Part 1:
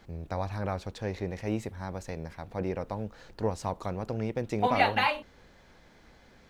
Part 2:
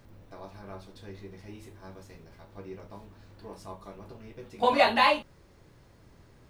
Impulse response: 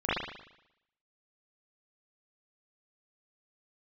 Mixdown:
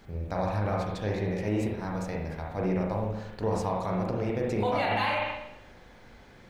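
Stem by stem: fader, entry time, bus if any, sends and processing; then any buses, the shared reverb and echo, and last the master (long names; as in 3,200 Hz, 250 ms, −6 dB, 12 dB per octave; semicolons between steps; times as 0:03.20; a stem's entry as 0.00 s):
−2.5 dB, 0.00 s, send −7 dB, no processing
−4.0 dB, 0.00 s, no send, no processing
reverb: on, RT60 0.80 s, pre-delay 38 ms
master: brickwall limiter −19 dBFS, peak gain reduction 11.5 dB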